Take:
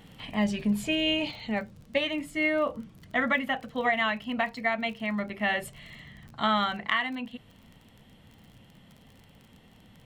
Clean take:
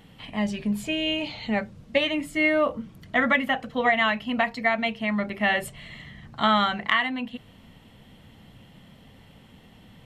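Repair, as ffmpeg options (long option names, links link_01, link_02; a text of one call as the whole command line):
ffmpeg -i in.wav -af "adeclick=threshold=4,asetnsamples=nb_out_samples=441:pad=0,asendcmd='1.31 volume volume 4.5dB',volume=0dB" out.wav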